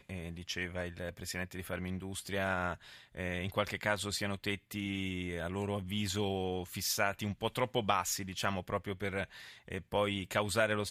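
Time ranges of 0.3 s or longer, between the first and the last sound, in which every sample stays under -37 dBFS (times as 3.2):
2.74–3.17
9.24–9.68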